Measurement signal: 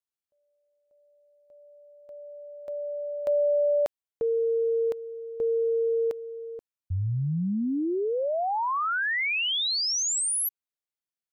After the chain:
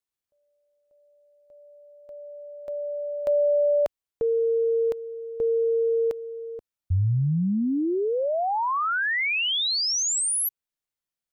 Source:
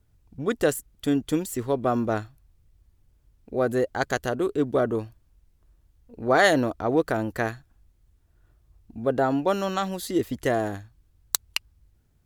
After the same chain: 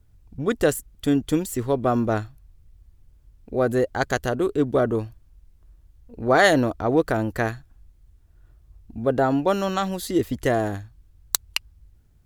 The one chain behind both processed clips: bass shelf 92 Hz +8 dB; trim +2 dB

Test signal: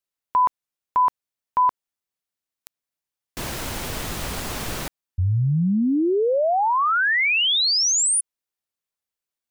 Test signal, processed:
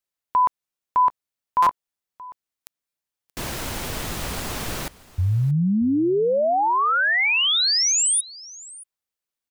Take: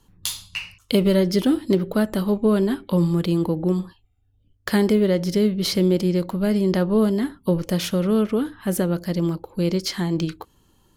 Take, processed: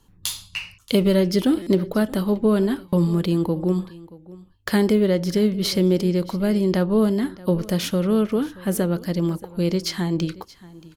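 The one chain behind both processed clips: on a send: delay 628 ms -20.5 dB; on the sum: buffer glitch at 1.62/2.88 s, samples 256, times 7

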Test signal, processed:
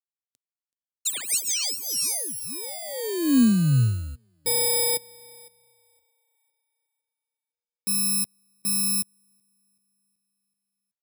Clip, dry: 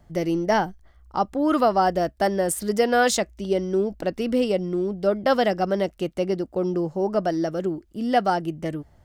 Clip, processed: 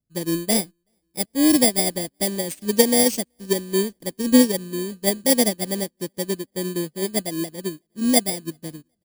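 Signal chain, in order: bit-reversed sample order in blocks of 32 samples; graphic EQ 125/250/500/1000/4000/8000 Hz +8/+9/+5/-6/+5/+10 dB; feedback delay 378 ms, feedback 59%, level -21.5 dB; upward expansion 2.5:1, over -33 dBFS; trim +1 dB

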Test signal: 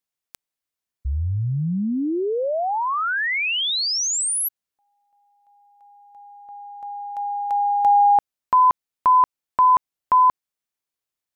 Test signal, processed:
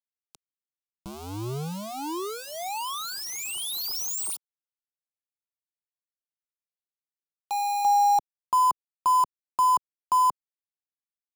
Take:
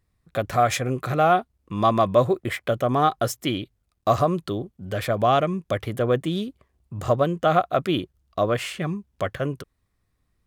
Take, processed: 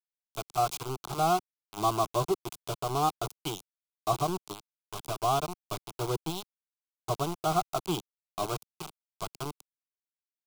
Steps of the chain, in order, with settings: resampled via 22.05 kHz; small samples zeroed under -21 dBFS; static phaser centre 360 Hz, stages 8; trim -5 dB

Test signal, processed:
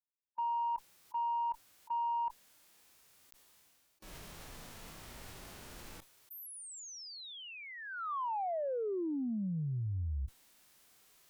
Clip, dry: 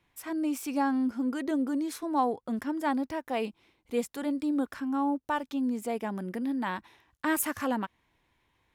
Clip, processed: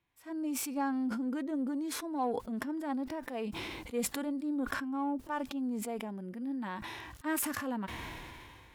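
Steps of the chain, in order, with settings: harmonic-percussive split percussive -12 dB; Chebyshev shaper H 7 -35 dB, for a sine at -17 dBFS; decay stretcher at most 24 dB/s; trim -5.5 dB

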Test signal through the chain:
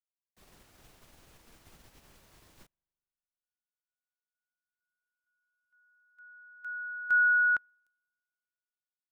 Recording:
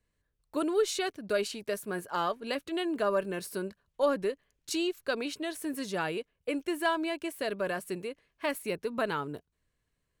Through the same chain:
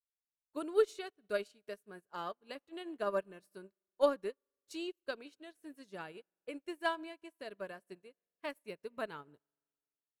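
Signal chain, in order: spring tank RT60 2.4 s, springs 41 ms, chirp 25 ms, DRR 20 dB; upward expansion 2.5:1, over -48 dBFS

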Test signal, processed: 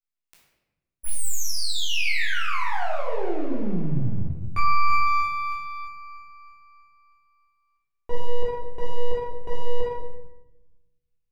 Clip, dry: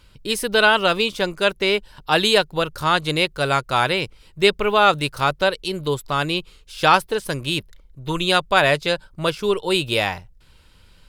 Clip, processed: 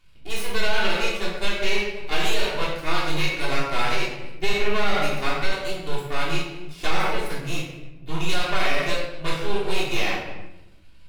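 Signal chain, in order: half-wave rectifier; simulated room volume 470 m³, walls mixed, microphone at 3.3 m; in parallel at -10 dB: crossover distortion -20.5 dBFS; on the sum: peaking EQ 2.4 kHz +5 dB 0.61 oct; loudness maximiser -3.5 dB; trim -8 dB

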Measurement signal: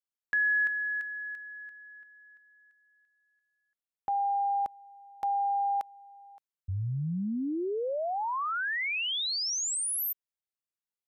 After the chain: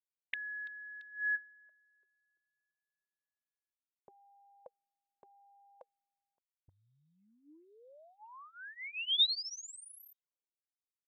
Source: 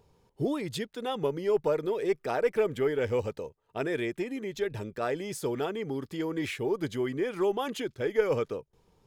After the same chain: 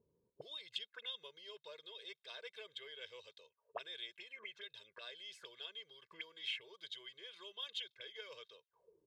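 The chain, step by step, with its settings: comb 1.9 ms, depth 87%; auto-wah 240–3600 Hz, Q 9.2, up, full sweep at -29 dBFS; trim +4 dB

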